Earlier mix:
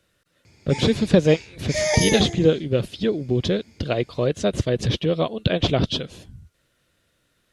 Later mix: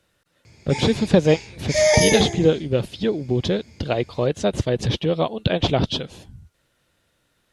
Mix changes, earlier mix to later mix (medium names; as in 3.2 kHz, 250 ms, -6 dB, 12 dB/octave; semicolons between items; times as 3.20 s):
speech: add peaking EQ 850 Hz +7.5 dB 0.38 oct; reverb: on, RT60 0.55 s